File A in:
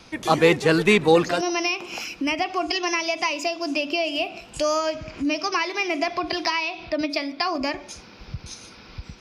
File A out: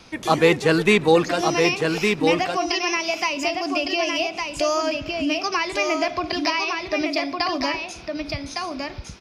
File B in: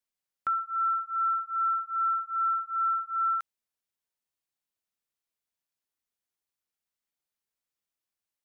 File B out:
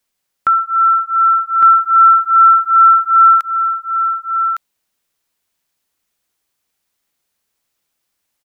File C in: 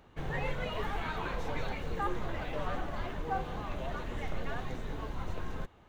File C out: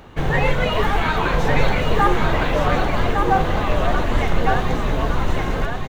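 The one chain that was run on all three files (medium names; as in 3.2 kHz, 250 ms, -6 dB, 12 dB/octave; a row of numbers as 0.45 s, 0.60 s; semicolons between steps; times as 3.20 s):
delay 1159 ms -4.5 dB; peak normalisation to -3 dBFS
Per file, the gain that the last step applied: +0.5 dB, +15.5 dB, +16.5 dB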